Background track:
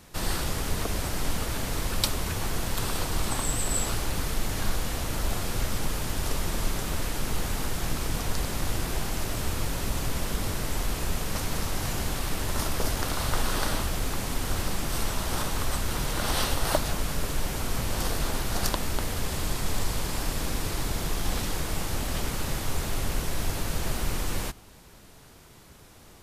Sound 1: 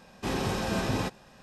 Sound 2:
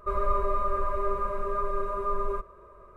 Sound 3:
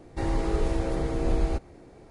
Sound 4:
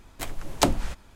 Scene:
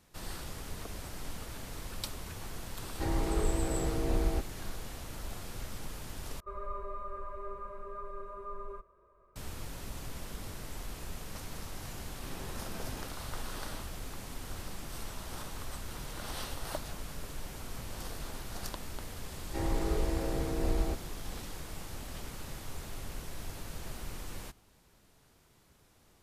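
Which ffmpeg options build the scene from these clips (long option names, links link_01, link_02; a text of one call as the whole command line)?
ffmpeg -i bed.wav -i cue0.wav -i cue1.wav -i cue2.wav -filter_complex "[3:a]asplit=2[link_01][link_02];[0:a]volume=-13dB[link_03];[link_01]bandreject=frequency=520:width=13[link_04];[link_03]asplit=2[link_05][link_06];[link_05]atrim=end=6.404[link_07];[2:a]atrim=end=2.96,asetpts=PTS-STARTPTS,volume=-13.5dB[link_08];[link_06]atrim=start=9.356[link_09];[link_04]atrim=end=2.1,asetpts=PTS-STARTPTS,volume=-4.5dB,afade=type=in:duration=0.004:curve=hsin,afade=type=out:start_time=2.096:duration=0.004:curve=hsin,adelay=2830[link_10];[1:a]atrim=end=1.42,asetpts=PTS-STARTPTS,volume=-17dB,afade=type=in:duration=0.004:curve=hsin,afade=type=out:start_time=1.416:duration=0.004:curve=hsin,adelay=11990[link_11];[link_02]atrim=end=2.1,asetpts=PTS-STARTPTS,volume=-5.5dB,afade=type=in:duration=0.004:curve=hsin,afade=type=out:start_time=2.096:duration=0.004:curve=hsin,adelay=19370[link_12];[link_07][link_08]acrossfade=duration=0.004:curve1=hsin:curve2=hsin[link_13];[link_13][link_09]acrossfade=duration=0.004:curve1=hsin:curve2=hsin[link_14];[link_14][link_10][link_11][link_12]amix=inputs=4:normalize=0" out.wav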